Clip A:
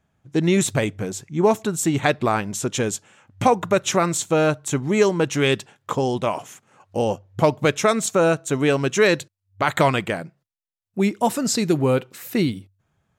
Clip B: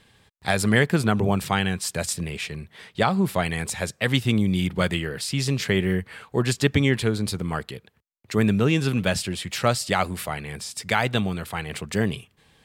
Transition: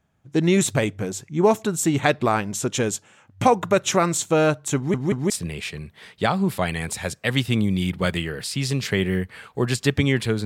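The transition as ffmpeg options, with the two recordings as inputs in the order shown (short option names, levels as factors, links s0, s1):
-filter_complex "[0:a]apad=whole_dur=10.45,atrim=end=10.45,asplit=3[s0][s1][s2];[s0]atrim=end=4.942[s3];[s1]atrim=start=4.758:end=4.942[s4];[s2]atrim=start=4.758:end=4.942[s5];[1:a]atrim=start=2.068:end=7.22[s6];[s3][s4]acrossfade=d=0.004:c1=hsin:c2=hsin[s7];[s7][s5]acrossfade=d=0.004:c1=hsin:c2=hsin[s8];[s8][s6]acrossfade=d=0.004:c1=hsin:c2=hsin"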